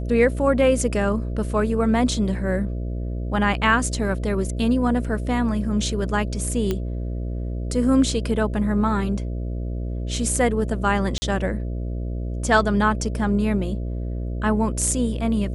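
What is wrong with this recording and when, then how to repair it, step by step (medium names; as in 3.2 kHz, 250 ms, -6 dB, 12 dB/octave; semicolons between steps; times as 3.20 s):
buzz 60 Hz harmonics 11 -27 dBFS
6.71 s: pop -11 dBFS
11.18–11.22 s: dropout 40 ms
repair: de-click; de-hum 60 Hz, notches 11; interpolate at 11.18 s, 40 ms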